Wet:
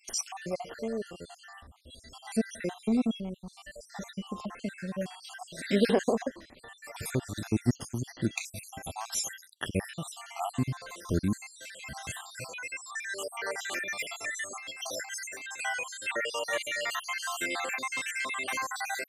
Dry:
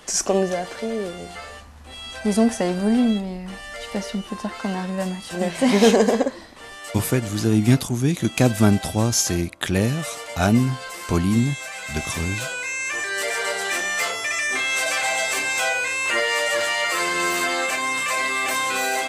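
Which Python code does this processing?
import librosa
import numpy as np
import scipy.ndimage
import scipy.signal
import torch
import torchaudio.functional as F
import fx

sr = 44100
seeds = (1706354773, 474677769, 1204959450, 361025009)

y = fx.spec_dropout(x, sr, seeds[0], share_pct=63)
y = fx.over_compress(y, sr, threshold_db=-34.0, ratio=-1.0, at=(14.56, 15.59), fade=0.02)
y = F.gain(torch.from_numpy(y), -7.0).numpy()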